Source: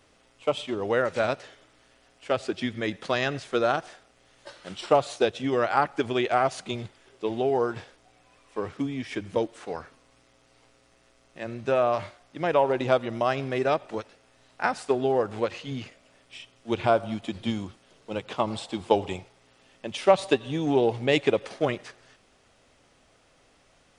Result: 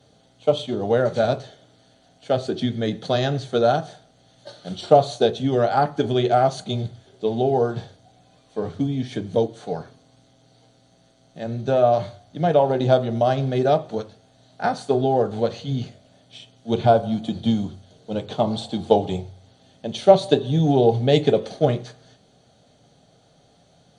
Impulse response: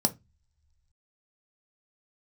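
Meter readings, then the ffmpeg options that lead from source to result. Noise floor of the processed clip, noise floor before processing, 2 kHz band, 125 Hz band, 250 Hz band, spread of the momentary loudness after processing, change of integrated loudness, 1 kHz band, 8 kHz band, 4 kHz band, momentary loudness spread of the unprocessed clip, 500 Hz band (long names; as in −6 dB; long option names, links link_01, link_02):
−58 dBFS, −62 dBFS, −3.5 dB, +11.5 dB, +6.0 dB, 14 LU, +5.5 dB, +4.5 dB, can't be measured, +4.0 dB, 14 LU, +5.5 dB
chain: -filter_complex "[1:a]atrim=start_sample=2205,asetrate=34398,aresample=44100[link_01];[0:a][link_01]afir=irnorm=-1:irlink=0,volume=-8.5dB"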